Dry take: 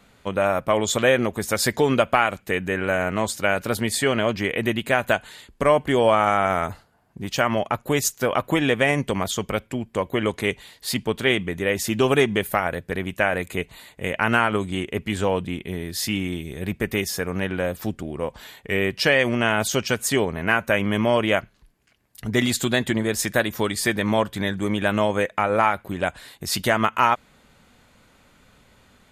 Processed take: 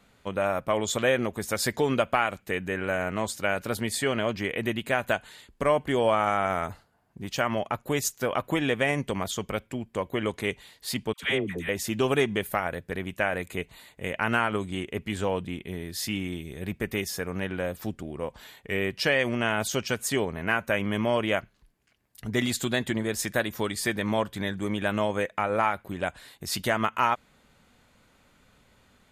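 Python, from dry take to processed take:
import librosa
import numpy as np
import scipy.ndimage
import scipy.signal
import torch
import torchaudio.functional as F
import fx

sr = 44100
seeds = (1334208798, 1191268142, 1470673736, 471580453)

y = fx.dispersion(x, sr, late='lows', ms=103.0, hz=750.0, at=(11.13, 11.69))
y = y * 10.0 ** (-5.5 / 20.0)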